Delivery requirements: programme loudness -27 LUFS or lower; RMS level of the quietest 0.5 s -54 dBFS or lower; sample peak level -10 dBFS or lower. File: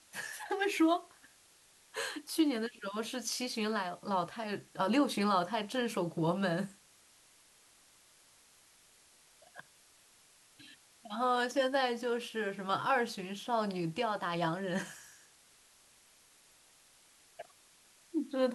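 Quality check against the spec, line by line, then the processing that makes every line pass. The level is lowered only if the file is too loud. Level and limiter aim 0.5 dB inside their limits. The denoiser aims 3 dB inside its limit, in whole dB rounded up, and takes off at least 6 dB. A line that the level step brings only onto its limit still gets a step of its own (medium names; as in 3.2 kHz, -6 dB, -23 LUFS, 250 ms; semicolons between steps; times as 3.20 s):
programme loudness -34.0 LUFS: pass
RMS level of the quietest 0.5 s -64 dBFS: pass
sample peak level -17.5 dBFS: pass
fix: none needed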